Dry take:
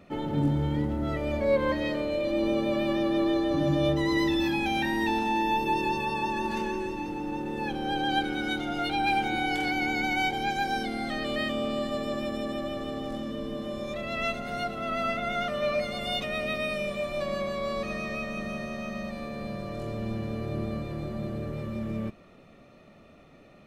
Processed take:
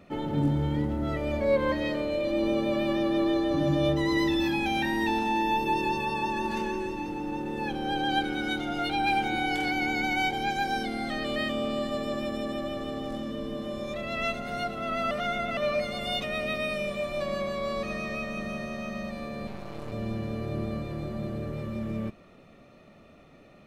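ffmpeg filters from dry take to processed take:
ffmpeg -i in.wav -filter_complex "[0:a]asettb=1/sr,asplit=3[link_01][link_02][link_03];[link_01]atrim=end=19.474[link_04];[link_02]atrim=start=19.47:end=19.92,asetpts=PTS-STARTPTS,afade=type=in:duration=0.004:curve=qsin,afade=type=out:start_time=0.446:duration=0.004:curve=qsin,aeval=exprs='max(val(0),0)':channel_layout=same[link_05];[link_03]atrim=start=19.916[link_06];[link_04][link_05]acrossfade=duration=0.004:curve1=hsin:curve2=qsin[link_07];[link_07][link_06]acrossfade=duration=0.004:curve1=qsin:curve2=hsin,asplit=3[link_08][link_09][link_10];[link_08]atrim=end=15.112[link_11];[link_09]atrim=start=15.108:end=15.572,asetpts=PTS-STARTPTS,areverse[link_12];[link_10]atrim=start=15.568[link_13];[link_11][link_12]acrossfade=duration=0.004:curve1=hsin:curve2=hsin[link_14];[link_14][link_13]acrossfade=duration=0.004:curve1=hsin:curve2=hsin" out.wav

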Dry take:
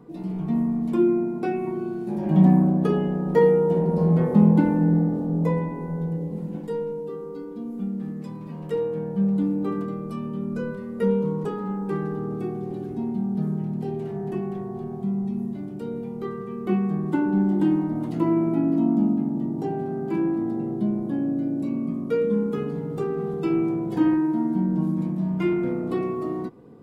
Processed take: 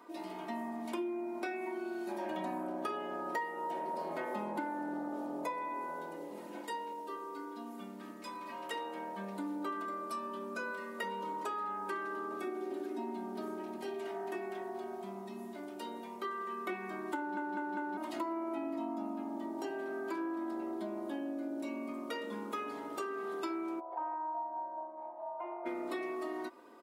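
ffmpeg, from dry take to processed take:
ffmpeg -i in.wav -filter_complex "[0:a]asettb=1/sr,asplit=3[link_01][link_02][link_03];[link_01]atrim=end=12.474[link_04];[link_02]atrim=start=12.47:end=13.77,asetpts=PTS-STARTPTS,afade=type=in:duration=0.004:curve=qsin,afade=type=out:start_time=1.296:duration=0.004:curve=qsin,highpass=frequency=270:width_type=q:width=2.1[link_05];[link_03]atrim=start=13.766[link_06];[link_04][link_05]acrossfade=duration=0.004:curve1=hsin:curve2=qsin[link_07];[link_07][link_06]acrossfade=duration=0.004:curve1=qsin:curve2=hsin,asplit=3[link_08][link_09][link_10];[link_08]afade=type=out:start_time=23.79:duration=0.02[link_11];[link_09]asuperpass=centerf=750:order=4:qfactor=1.8,afade=type=in:start_time=23.79:duration=0.02,afade=type=out:start_time=25.65:duration=0.02[link_12];[link_10]afade=type=in:start_time=25.65:duration=0.02[link_13];[link_11][link_12][link_13]amix=inputs=3:normalize=0,asplit=5[link_14][link_15][link_16][link_17][link_18];[link_14]atrim=end=17.372[link_19];[link_15]atrim=start=17.168:end=17.372[link_20];[link_16]atrim=start=17.168:end=17.372[link_21];[link_17]atrim=start=17.168:end=17.372[link_22];[link_18]atrim=start=17.968[link_23];[link_19][link_20]acrossfade=duration=0.004:curve1=hsin:curve2=hsin[link_24];[link_24][link_21]acrossfade=duration=0.004:curve1=hsin:curve2=hsin[link_25];[link_25][link_22]acrossfade=duration=0.004:curve1=hsin:curve2=hsin[link_26];[link_26][link_23]acrossfade=duration=0.004:curve1=hsin:curve2=hsin,highpass=800,aecho=1:1:3.2:0.77,acompressor=threshold=-39dB:ratio=5,volume=3.5dB" out.wav

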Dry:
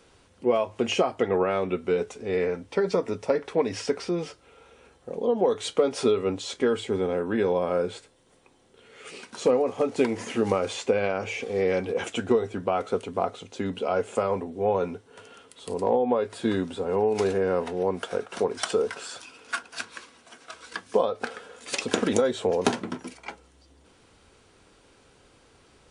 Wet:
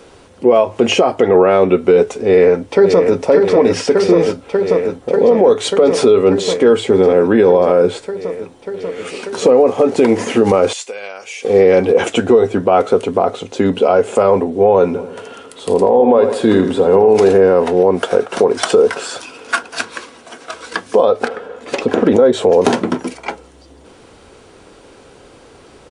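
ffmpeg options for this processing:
ffmpeg -i in.wav -filter_complex "[0:a]asplit=2[link_01][link_02];[link_02]afade=type=in:start_time=2.19:duration=0.01,afade=type=out:start_time=3.18:duration=0.01,aecho=0:1:590|1180|1770|2360|2950|3540|4130|4720|5310|5900|6490|7080:0.501187|0.426009|0.362108|0.307792|0.261623|0.222379|0.189023|0.160669|0.136569|0.116083|0.0986709|0.0838703[link_03];[link_01][link_03]amix=inputs=2:normalize=0,asettb=1/sr,asplit=3[link_04][link_05][link_06];[link_04]atrim=end=10.734[link_07];[link_05]atrim=start=10.73:end=11.45,asetpts=PTS-STARTPTS,afade=type=in:duration=0.004:curve=qsin,afade=type=out:start_time=0.716:duration=0.004:curve=qsin,aderivative[link_08];[link_06]atrim=start=11.446[link_09];[link_07][link_08]acrossfade=duration=0.004:curve1=hsin:curve2=qsin[link_10];[link_10][link_09]acrossfade=duration=0.004:curve1=qsin:curve2=hsin,asplit=3[link_11][link_12][link_13];[link_11]afade=type=out:start_time=14.95:duration=0.02[link_14];[link_12]asplit=2[link_15][link_16];[link_16]adelay=83,lowpass=frequency=4300:poles=1,volume=-10.5dB,asplit=2[link_17][link_18];[link_18]adelay=83,lowpass=frequency=4300:poles=1,volume=0.47,asplit=2[link_19][link_20];[link_20]adelay=83,lowpass=frequency=4300:poles=1,volume=0.47,asplit=2[link_21][link_22];[link_22]adelay=83,lowpass=frequency=4300:poles=1,volume=0.47,asplit=2[link_23][link_24];[link_24]adelay=83,lowpass=frequency=4300:poles=1,volume=0.47[link_25];[link_15][link_17][link_19][link_21][link_23][link_25]amix=inputs=6:normalize=0,afade=type=in:start_time=14.95:duration=0.02,afade=type=out:start_time=17.29:duration=0.02[link_26];[link_13]afade=type=in:start_time=17.29:duration=0.02[link_27];[link_14][link_26][link_27]amix=inputs=3:normalize=0,asettb=1/sr,asplit=3[link_28][link_29][link_30];[link_28]atrim=end=21.284[link_31];[link_29]atrim=start=21.28:end=22.33,asetpts=PTS-STARTPTS,afade=type=in:duration=0.004:curve=qsin,afade=type=out:start_time=1.046:duration=0.004:curve=qsin,lowpass=frequency=1300:poles=1[link_32];[link_30]atrim=start=22.326[link_33];[link_31][link_32]acrossfade=duration=0.004:curve1=hsin:curve2=qsin[link_34];[link_34][link_33]acrossfade=duration=0.004:curve1=qsin:curve2=hsin,equalizer=frequency=470:width=0.56:gain=6.5,alimiter=level_in=12.5dB:limit=-1dB:release=50:level=0:latency=1,volume=-1dB" out.wav

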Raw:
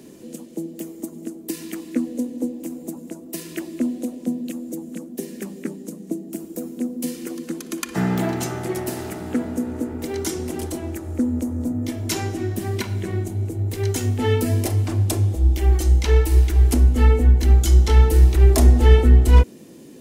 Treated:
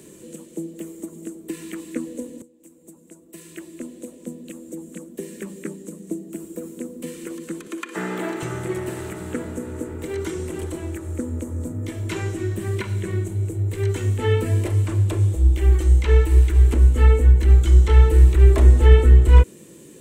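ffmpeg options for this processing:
ffmpeg -i in.wav -filter_complex "[0:a]asettb=1/sr,asplit=3[link_01][link_02][link_03];[link_01]atrim=end=7.674[link_04];[link_02]atrim=start=7.67:end=8.43,asetpts=PTS-STARTPTS,afade=type=in:duration=0.004:curve=qsin,afade=type=out:start_time=0.756:duration=0.004:curve=qsin,highpass=frequency=240:width=0.5412,highpass=frequency=240:width=1.3066[link_05];[link_03]atrim=start=8.426[link_06];[link_04][link_05]acrossfade=duration=0.004:curve1=hsin:curve2=qsin[link_07];[link_07][link_06]acrossfade=duration=0.004:curve1=qsin:curve2=hsin,asplit=2[link_08][link_09];[link_08]atrim=end=2.42,asetpts=PTS-STARTPTS,afade=type=out:start_time=2.416:duration=0.004:curve=hsin:silence=0.0749894[link_10];[link_09]atrim=start=2.42,asetpts=PTS-STARTPTS,afade=type=in:duration=2.81:silence=0.0749894[link_11];[link_10][link_11]concat=n=2:v=0:a=1,equalizer=frequency=740:width_type=o:width=0.32:gain=-12,acrossover=split=3200[link_12][link_13];[link_13]acompressor=threshold=-46dB:ratio=4:attack=1:release=60[link_14];[link_12][link_14]amix=inputs=2:normalize=0,equalizer=frequency=250:width_type=o:width=0.33:gain=-11,equalizer=frequency=5000:width_type=o:width=0.33:gain=-7,equalizer=frequency=8000:width_type=o:width=0.33:gain=10,volume=1dB" out.wav

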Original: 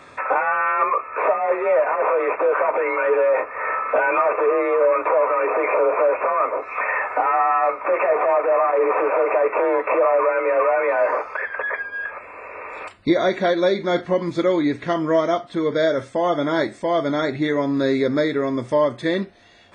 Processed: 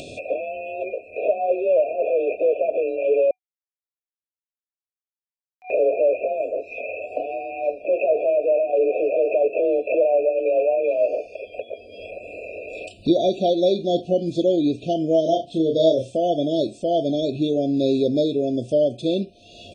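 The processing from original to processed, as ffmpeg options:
ffmpeg -i in.wav -filter_complex "[0:a]asplit=3[link_01][link_02][link_03];[link_01]afade=type=out:start_time=15.25:duration=0.02[link_04];[link_02]asplit=2[link_05][link_06];[link_06]adelay=31,volume=-4dB[link_07];[link_05][link_07]amix=inputs=2:normalize=0,afade=type=in:start_time=15.25:duration=0.02,afade=type=out:start_time=16.16:duration=0.02[link_08];[link_03]afade=type=in:start_time=16.16:duration=0.02[link_09];[link_04][link_08][link_09]amix=inputs=3:normalize=0,asplit=3[link_10][link_11][link_12];[link_10]atrim=end=3.31,asetpts=PTS-STARTPTS,afade=type=out:start_time=3.306:duration=0.004:curve=hsin[link_13];[link_11]atrim=start=3.31:end=5.7,asetpts=PTS-STARTPTS,volume=0[link_14];[link_12]atrim=start=5.7,asetpts=PTS-STARTPTS,afade=type=in:duration=0.004:curve=hsin[link_15];[link_13][link_14][link_15]concat=n=3:v=0:a=1,afftfilt=real='re*(1-between(b*sr/4096,740,2400))':imag='im*(1-between(b*sr/4096,740,2400))':win_size=4096:overlap=0.75,acompressor=mode=upward:threshold=-27dB:ratio=2.5" out.wav

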